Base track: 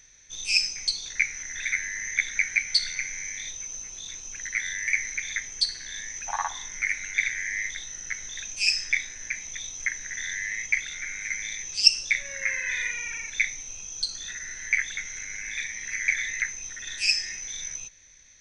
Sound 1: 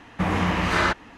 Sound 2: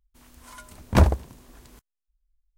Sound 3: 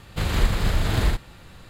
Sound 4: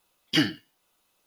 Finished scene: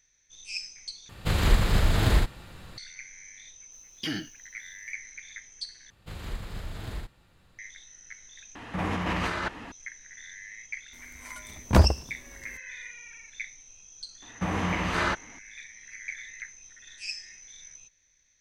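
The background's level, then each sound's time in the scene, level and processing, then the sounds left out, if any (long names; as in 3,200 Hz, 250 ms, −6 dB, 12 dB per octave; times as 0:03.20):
base track −13 dB
0:01.09: overwrite with 3 −0.5 dB
0:03.70: mix in 4 −1 dB, fades 0.05 s + brickwall limiter −21 dBFS
0:05.90: overwrite with 3 −15.5 dB
0:08.55: overwrite with 1 −1.5 dB + compressor whose output falls as the input rises −28 dBFS
0:10.78: mix in 2 −1.5 dB
0:14.22: mix in 1 −5.5 dB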